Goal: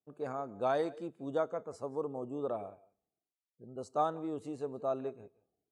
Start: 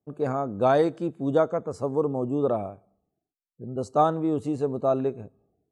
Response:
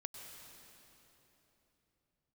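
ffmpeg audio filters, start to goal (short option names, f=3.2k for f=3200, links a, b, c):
-filter_complex "[0:a]lowshelf=f=280:g=-10[a];[1:a]atrim=start_sample=2205,afade=t=out:st=0.14:d=0.01,atrim=end_sample=6615,asetrate=23373,aresample=44100[b];[a][b]afir=irnorm=-1:irlink=0,volume=-7dB"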